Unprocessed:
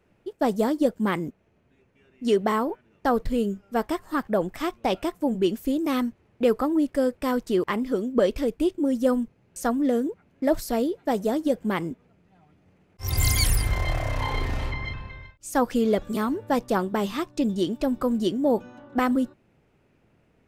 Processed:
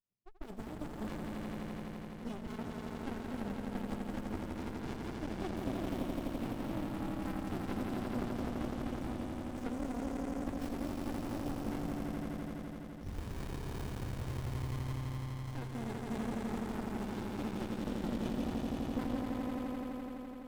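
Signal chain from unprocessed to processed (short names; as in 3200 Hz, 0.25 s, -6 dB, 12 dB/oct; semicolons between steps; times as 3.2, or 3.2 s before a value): per-bin expansion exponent 1.5; low-pass opened by the level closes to 2900 Hz, open at -24 dBFS; pre-emphasis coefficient 0.8; compressor, threshold -43 dBFS, peak gain reduction 17 dB; HPF 72 Hz; on a send: swelling echo 84 ms, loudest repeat 5, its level -4 dB; on the sum: running maximum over 65 samples; gain +6.5 dB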